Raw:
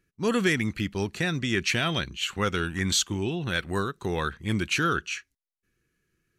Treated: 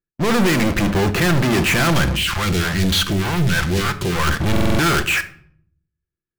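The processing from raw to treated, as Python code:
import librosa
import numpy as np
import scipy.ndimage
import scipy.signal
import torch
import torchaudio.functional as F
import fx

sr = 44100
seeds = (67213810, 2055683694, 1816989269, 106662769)

y = scipy.signal.sosfilt(scipy.signal.butter(2, 1600.0, 'lowpass', fs=sr, output='sos'), x)
y = fx.peak_eq(y, sr, hz=150.0, db=-2.5, octaves=2.1)
y = fx.leveller(y, sr, passes=5)
y = fx.auto_swell(y, sr, attack_ms=179.0)
y = fx.leveller(y, sr, passes=5)
y = fx.phaser_stages(y, sr, stages=2, low_hz=260.0, high_hz=1100.0, hz=3.3, feedback_pct=25, at=(2.16, 4.27))
y = 10.0 ** (-18.0 / 20.0) * np.tanh(y / 10.0 ** (-18.0 / 20.0))
y = fx.room_shoebox(y, sr, seeds[0], volume_m3=950.0, walls='furnished', distance_m=0.81)
y = fx.buffer_glitch(y, sr, at_s=(4.51,), block=2048, repeats=5)
y = y * librosa.db_to_amplitude(2.5)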